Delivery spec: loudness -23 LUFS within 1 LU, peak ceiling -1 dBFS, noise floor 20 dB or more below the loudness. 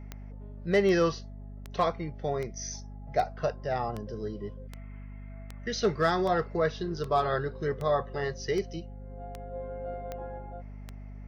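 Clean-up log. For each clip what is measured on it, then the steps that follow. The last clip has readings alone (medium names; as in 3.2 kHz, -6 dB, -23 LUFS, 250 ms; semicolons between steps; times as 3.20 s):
clicks found 15; hum 50 Hz; highest harmonic 250 Hz; hum level -40 dBFS; loudness -30.5 LUFS; peak level -13.0 dBFS; loudness target -23.0 LUFS
-> de-click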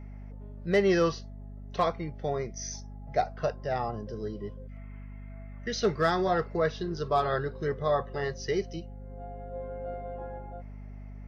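clicks found 0; hum 50 Hz; highest harmonic 250 Hz; hum level -40 dBFS
-> de-hum 50 Hz, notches 5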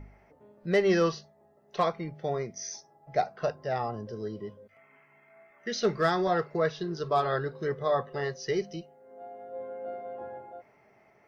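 hum not found; loudness -30.5 LUFS; peak level -14.5 dBFS; loudness target -23.0 LUFS
-> trim +7.5 dB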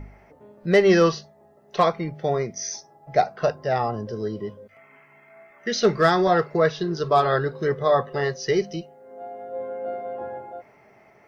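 loudness -23.0 LUFS; peak level -7.0 dBFS; noise floor -55 dBFS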